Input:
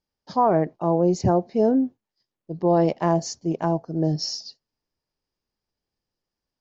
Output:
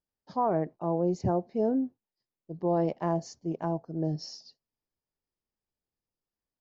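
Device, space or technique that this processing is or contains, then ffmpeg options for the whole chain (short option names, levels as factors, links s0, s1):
behind a face mask: -af "highshelf=f=2800:g=-8,volume=0.422"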